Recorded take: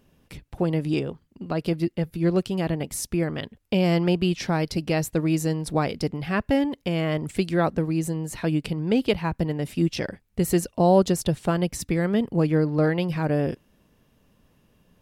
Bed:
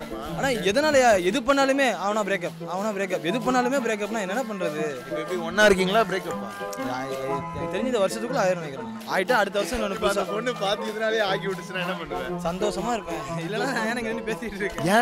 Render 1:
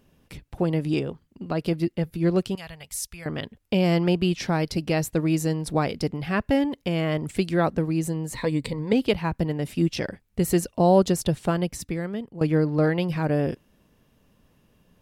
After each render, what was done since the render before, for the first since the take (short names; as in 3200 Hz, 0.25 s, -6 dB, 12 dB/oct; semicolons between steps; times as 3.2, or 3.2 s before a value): 2.55–3.26 passive tone stack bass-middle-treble 10-0-10; 8.34–8.93 ripple EQ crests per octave 1, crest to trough 12 dB; 11.45–12.41 fade out, to -16.5 dB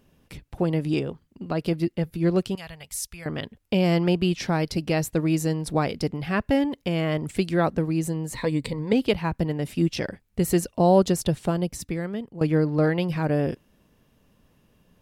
11.44–11.86 dynamic EQ 1800 Hz, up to -7 dB, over -42 dBFS, Q 0.88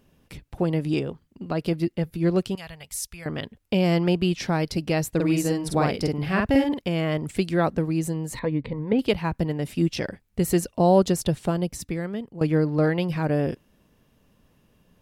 5.15–6.81 doubler 48 ms -2 dB; 8.39–8.99 air absorption 430 m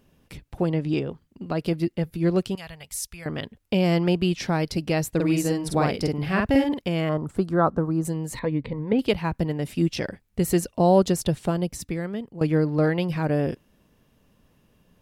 0.69–1.11 air absorption 74 m; 7.09–8.05 resonant high shelf 1700 Hz -10 dB, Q 3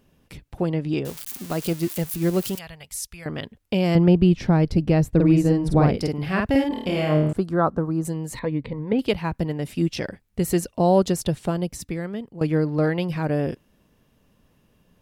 1.05–2.59 switching spikes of -23 dBFS; 3.95–5.98 tilt -3 dB/oct; 6.68–7.33 flutter echo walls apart 4.5 m, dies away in 0.64 s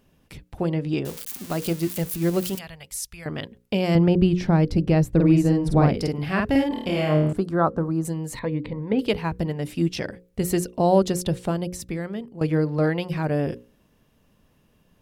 notches 60/120/180/240/300/360/420/480/540 Hz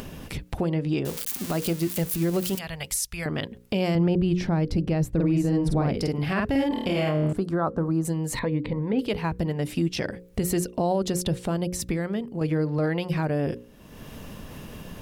upward compressor, threshold -21 dBFS; limiter -15.5 dBFS, peak gain reduction 10 dB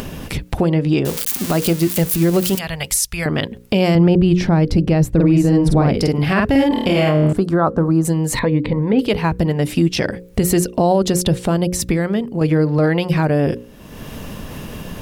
gain +9.5 dB